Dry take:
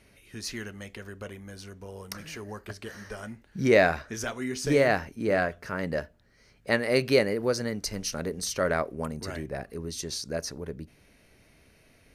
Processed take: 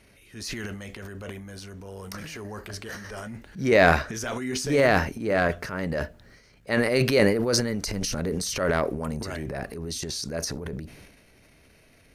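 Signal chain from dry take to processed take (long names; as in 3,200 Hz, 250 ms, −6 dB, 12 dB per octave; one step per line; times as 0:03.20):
0:07.91–0:08.31: low-shelf EQ 400 Hz +4.5 dB
transient designer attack −5 dB, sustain +10 dB
level +2 dB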